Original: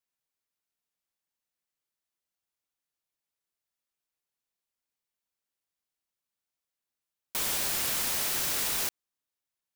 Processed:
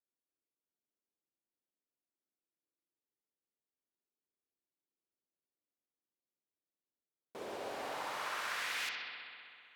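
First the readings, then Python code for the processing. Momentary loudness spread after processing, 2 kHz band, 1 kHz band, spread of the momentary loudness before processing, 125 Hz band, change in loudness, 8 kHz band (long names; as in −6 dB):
13 LU, −2.0 dB, −0.5 dB, 5 LU, −16.5 dB, −12.0 dB, −20.0 dB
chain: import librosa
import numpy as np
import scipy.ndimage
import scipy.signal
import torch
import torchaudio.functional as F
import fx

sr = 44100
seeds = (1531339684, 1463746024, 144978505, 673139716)

y = fx.filter_sweep_bandpass(x, sr, from_hz=330.0, to_hz=6300.0, start_s=7.13, end_s=9.75, q=1.8)
y = fx.echo_bbd(y, sr, ms=64, stages=2048, feedback_pct=83, wet_db=-5.0)
y = y * 10.0 ** (1.0 / 20.0)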